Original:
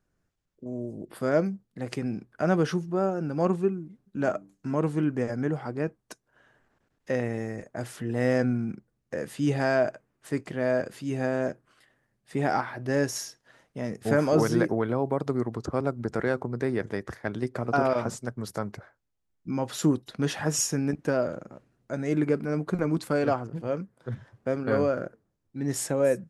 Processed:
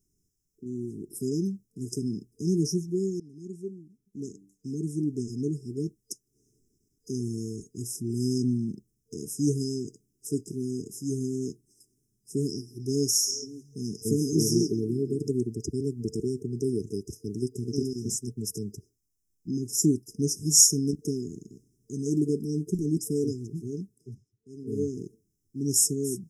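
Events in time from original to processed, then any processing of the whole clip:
3.20–5.86 s: fade in, from -20 dB
12.66–15.31 s: repeats whose band climbs or falls 135 ms, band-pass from 4.5 kHz, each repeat -1.4 oct, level -4.5 dB
23.81–24.92 s: dip -19.5 dB, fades 0.44 s linear
whole clip: FFT band-reject 450–5000 Hz; treble shelf 2 kHz +11.5 dB

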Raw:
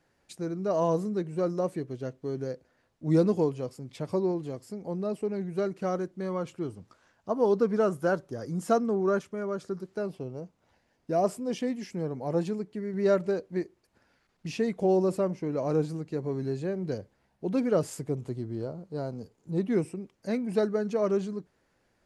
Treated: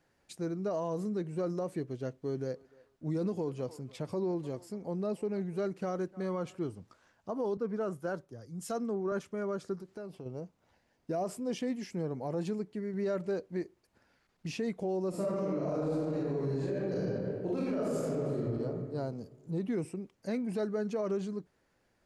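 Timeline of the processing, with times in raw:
2.18–6.58 s: band-passed feedback delay 299 ms, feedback 45%, band-pass 1.1 kHz, level -20 dB
7.57–9.12 s: three bands expanded up and down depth 100%
9.75–10.26 s: compression 3:1, threshold -40 dBFS
15.09–18.36 s: reverb throw, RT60 1.8 s, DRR -9.5 dB
whole clip: gain riding within 3 dB 0.5 s; peak limiter -20.5 dBFS; trim -5 dB

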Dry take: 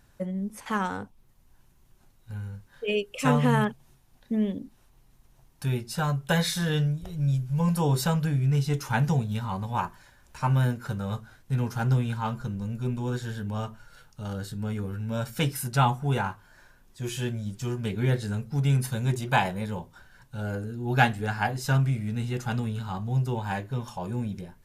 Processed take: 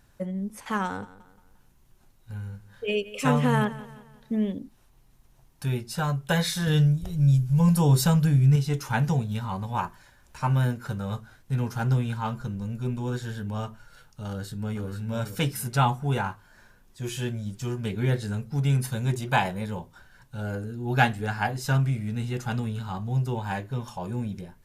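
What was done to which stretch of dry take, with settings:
0.85–4.46 s: feedback delay 175 ms, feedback 43%, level -17 dB
6.67–8.56 s: tone controls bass +6 dB, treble +5 dB
14.27–14.87 s: echo throw 480 ms, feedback 35%, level -9 dB

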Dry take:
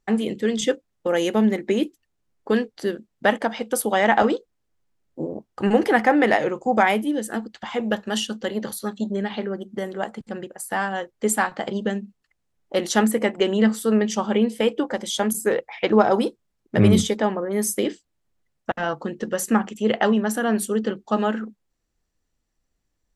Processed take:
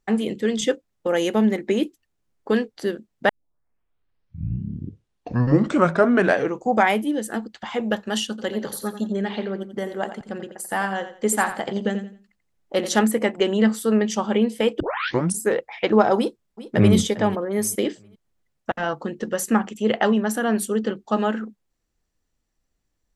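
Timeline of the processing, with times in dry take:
3.29 s: tape start 3.45 s
8.29–12.99 s: feedback delay 87 ms, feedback 27%, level -11 dB
14.80 s: tape start 0.59 s
16.17–16.95 s: echo throw 400 ms, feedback 30%, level -15.5 dB

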